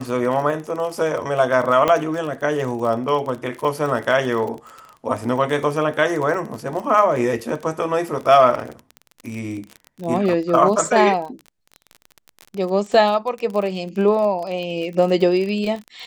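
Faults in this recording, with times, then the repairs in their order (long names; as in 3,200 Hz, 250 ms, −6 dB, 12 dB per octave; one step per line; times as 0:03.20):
surface crackle 32 per second −26 dBFS
0:01.88: click −6 dBFS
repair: click removal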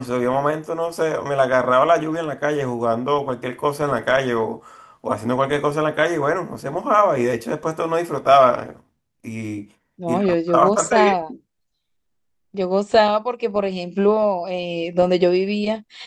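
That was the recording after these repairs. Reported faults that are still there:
none of them is left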